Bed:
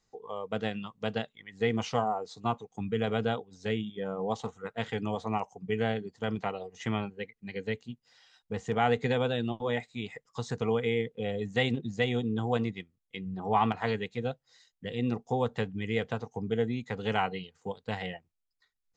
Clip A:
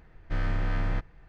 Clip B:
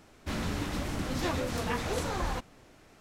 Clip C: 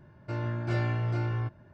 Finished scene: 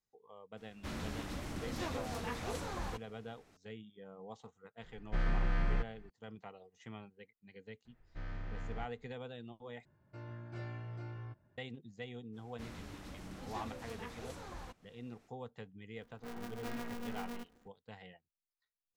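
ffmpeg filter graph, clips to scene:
-filter_complex "[2:a]asplit=2[a][b];[1:a]asplit=2[c][d];[3:a]asplit=2[e][f];[0:a]volume=-17.5dB[g];[c]aecho=1:1:5.7:0.56[h];[d]aresample=16000,aresample=44100[i];[b]acompressor=mode=upward:threshold=-45dB:ratio=2.5:attack=3.2:release=140:knee=2.83:detection=peak[j];[f]aeval=exprs='val(0)*sgn(sin(2*PI*120*n/s))':c=same[k];[g]asplit=2[l][m];[l]atrim=end=9.854[n];[e]atrim=end=1.73,asetpts=PTS-STARTPTS,volume=-15.5dB[o];[m]atrim=start=11.576[p];[a]atrim=end=3,asetpts=PTS-STARTPTS,volume=-8.5dB,afade=t=in:d=0.004:c=hsin,afade=t=out:st=2.996:d=0.004:c=hsin,adelay=570[q];[h]atrim=end=1.28,asetpts=PTS-STARTPTS,volume=-6dB,afade=t=in:d=0.004:c=hsin,afade=t=out:st=1.276:d=0.004:c=hsin,adelay=4820[r];[i]atrim=end=1.28,asetpts=PTS-STARTPTS,volume=-15dB,afade=t=in:d=0.004:c=hsin,afade=t=out:st=1.276:d=0.004:c=hsin,adelay=7850[s];[j]atrim=end=3,asetpts=PTS-STARTPTS,volume=-15.5dB,afade=t=in:d=0.05,afade=t=out:st=2.95:d=0.05,adelay=12320[t];[k]atrim=end=1.73,asetpts=PTS-STARTPTS,volume=-13dB,afade=t=in:d=0.004:c=hsin,afade=t=out:st=1.726:d=0.004:c=hsin,adelay=15950[u];[n][o]acrossfade=d=0.004:c1=hsin:c2=hsin[v];[v][p]acrossfade=d=0.004:c1=hsin:c2=hsin[w];[w][q][r][s][t][u]amix=inputs=6:normalize=0"

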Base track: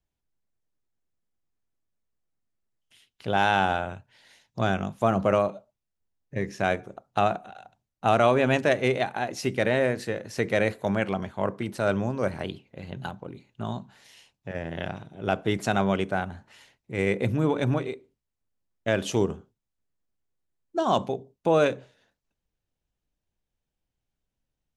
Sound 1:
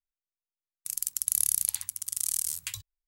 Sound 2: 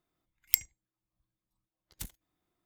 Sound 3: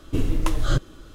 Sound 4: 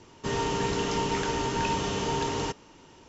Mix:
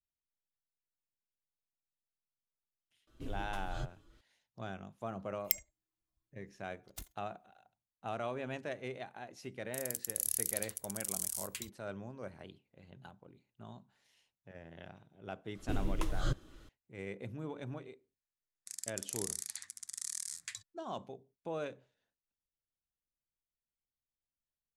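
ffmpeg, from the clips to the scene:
-filter_complex "[3:a]asplit=2[a][b];[1:a]asplit=2[c][d];[0:a]volume=-18.5dB[e];[a]asplit=2[f][g];[g]adelay=6.4,afreqshift=2.9[h];[f][h]amix=inputs=2:normalize=1[i];[2:a]aecho=1:1:2.9:0.4[j];[c]acontrast=68[k];[d]highpass=220,equalizer=f=930:t=q:w=4:g=-8,equalizer=f=1.8k:t=q:w=4:g=8,equalizer=f=2.9k:t=q:w=4:g=-9,lowpass=f=8.5k:w=0.5412,lowpass=f=8.5k:w=1.3066[l];[i]atrim=end=1.14,asetpts=PTS-STARTPTS,volume=-17.5dB,afade=t=in:d=0.004:c=hsin,afade=t=out:st=1.136:d=0.004:c=hsin,adelay=3070[m];[j]atrim=end=2.65,asetpts=PTS-STARTPTS,volume=-6.5dB,afade=t=in:d=0.004:c=hsin,afade=t=out:st=2.646:d=0.004:c=hsin,adelay=219177S[n];[k]atrim=end=3.07,asetpts=PTS-STARTPTS,volume=-14dB,afade=t=in:d=0.004:c=hsin,afade=t=out:st=3.066:d=0.004:c=hsin,adelay=8880[o];[b]atrim=end=1.14,asetpts=PTS-STARTPTS,volume=-12dB,afade=t=in:d=0.004:c=hsin,afade=t=out:st=1.136:d=0.004:c=hsin,adelay=15550[p];[l]atrim=end=3.07,asetpts=PTS-STARTPTS,volume=-6dB,afade=t=in:d=0.004:c=hsin,afade=t=out:st=3.066:d=0.004:c=hsin,adelay=17810[q];[e][m][n][o][p][q]amix=inputs=6:normalize=0"

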